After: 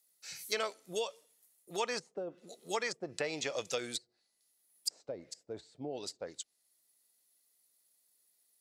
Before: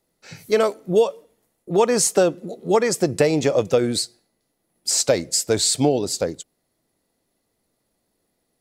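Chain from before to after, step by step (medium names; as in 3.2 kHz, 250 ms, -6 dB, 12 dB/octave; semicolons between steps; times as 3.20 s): pre-emphasis filter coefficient 0.97; low-pass that closes with the level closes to 470 Hz, closed at -24.5 dBFS; trim +3 dB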